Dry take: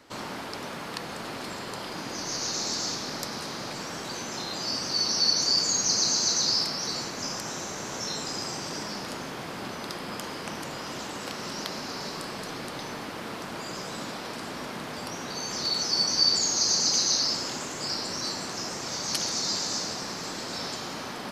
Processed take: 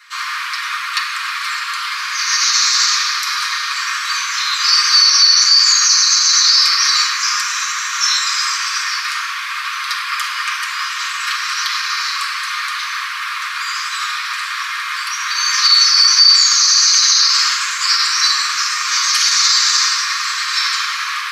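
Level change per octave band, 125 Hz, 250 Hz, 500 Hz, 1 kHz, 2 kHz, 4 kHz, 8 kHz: under -40 dB, under -40 dB, under -35 dB, +15.0 dB, +20.5 dB, +15.5 dB, +13.5 dB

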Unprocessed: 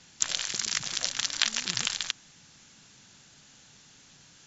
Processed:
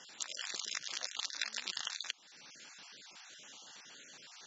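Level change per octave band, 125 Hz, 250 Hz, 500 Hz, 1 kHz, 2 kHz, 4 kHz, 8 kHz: under -20 dB, -15.5 dB, -8.5 dB, -8.5 dB, -8.5 dB, -10.0 dB, no reading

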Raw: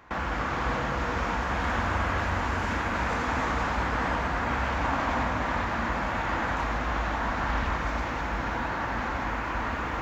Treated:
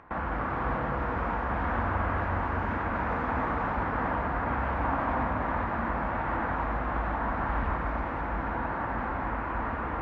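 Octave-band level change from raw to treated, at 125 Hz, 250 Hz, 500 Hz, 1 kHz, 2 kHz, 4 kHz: -1.0 dB, -0.5 dB, -0.5 dB, -1.0 dB, -4.0 dB, under -10 dB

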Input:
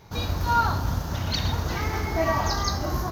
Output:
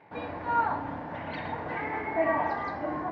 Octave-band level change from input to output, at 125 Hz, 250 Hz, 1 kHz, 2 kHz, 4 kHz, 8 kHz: -17.5 dB, -4.0 dB, -2.5 dB, -2.5 dB, -20.5 dB, under -35 dB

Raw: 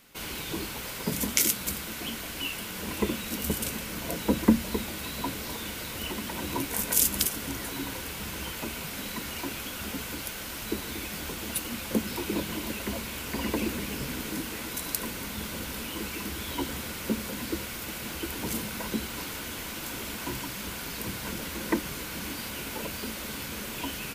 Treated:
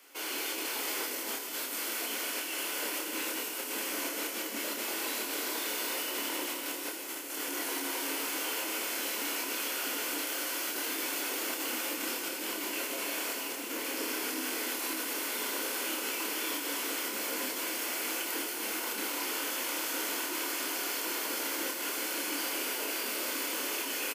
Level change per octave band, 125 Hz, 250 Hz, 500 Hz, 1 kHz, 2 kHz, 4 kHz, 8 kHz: under -25 dB, -8.5 dB, -2.0 dB, 0.0 dB, +1.5 dB, +0.5 dB, -0.5 dB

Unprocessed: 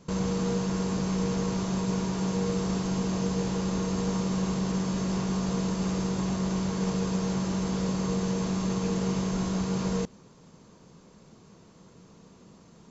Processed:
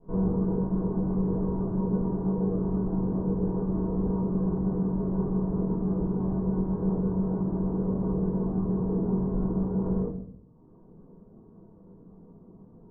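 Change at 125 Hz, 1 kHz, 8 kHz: +1.5 dB, -5.0 dB, no reading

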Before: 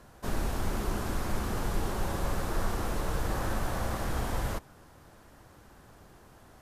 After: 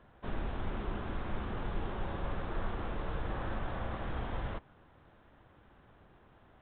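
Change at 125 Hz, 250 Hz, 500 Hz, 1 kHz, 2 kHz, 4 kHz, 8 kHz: -5.5 dB, -5.5 dB, -5.5 dB, -5.5 dB, -5.5 dB, -8.5 dB, under -40 dB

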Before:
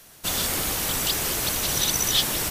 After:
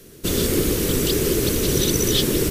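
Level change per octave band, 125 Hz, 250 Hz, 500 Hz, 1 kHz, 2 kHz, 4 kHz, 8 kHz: +11.0 dB, +14.0 dB, +13.5 dB, -4.5 dB, -1.0 dB, 0.0 dB, 0.0 dB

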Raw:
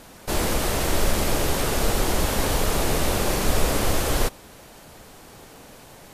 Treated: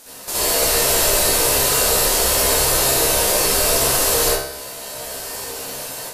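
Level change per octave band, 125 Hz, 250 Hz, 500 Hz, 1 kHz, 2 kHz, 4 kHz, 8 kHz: -3.0 dB, -2.5 dB, +6.0 dB, +4.5 dB, +6.0 dB, +10.0 dB, +13.0 dB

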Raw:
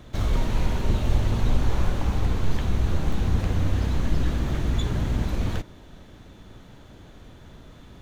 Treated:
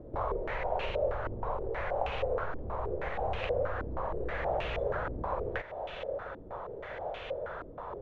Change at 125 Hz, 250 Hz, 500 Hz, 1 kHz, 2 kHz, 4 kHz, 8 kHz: -17.5 dB, -15.5 dB, +4.0 dB, +2.5 dB, 0.0 dB, -8.5 dB, no reading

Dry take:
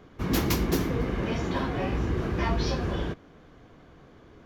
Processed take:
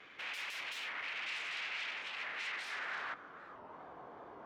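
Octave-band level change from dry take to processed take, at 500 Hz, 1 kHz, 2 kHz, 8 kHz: -23.0 dB, -11.0 dB, -1.0 dB, -15.0 dB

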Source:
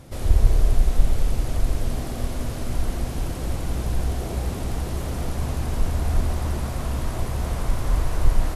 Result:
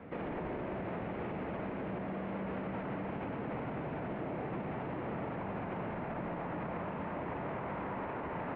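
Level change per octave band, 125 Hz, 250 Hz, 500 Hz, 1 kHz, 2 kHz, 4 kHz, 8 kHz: -17.5 dB, -5.5 dB, -4.0 dB, -3.5 dB, -5.0 dB, -19.5 dB, under -40 dB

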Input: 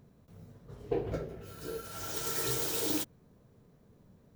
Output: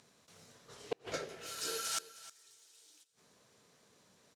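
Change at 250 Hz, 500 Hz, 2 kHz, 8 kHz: -15.5 dB, -8.5 dB, -2.5 dB, -4.0 dB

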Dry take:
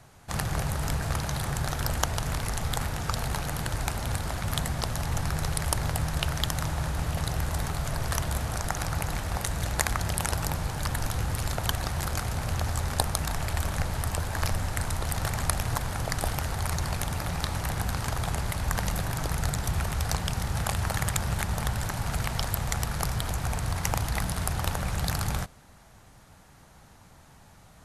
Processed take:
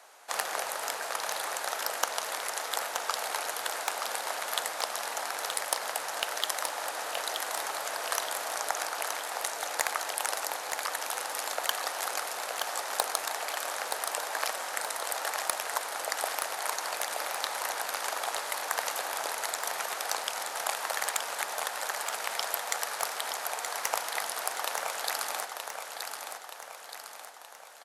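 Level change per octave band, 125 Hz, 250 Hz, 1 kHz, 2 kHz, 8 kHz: under -40 dB, -20.0 dB, +1.5 dB, +1.5 dB, +1.0 dB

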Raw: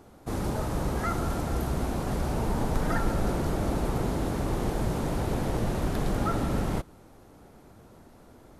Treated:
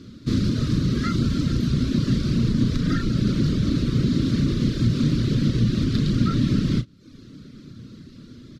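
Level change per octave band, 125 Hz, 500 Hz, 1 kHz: +9.5 dB, -2.0 dB, -7.0 dB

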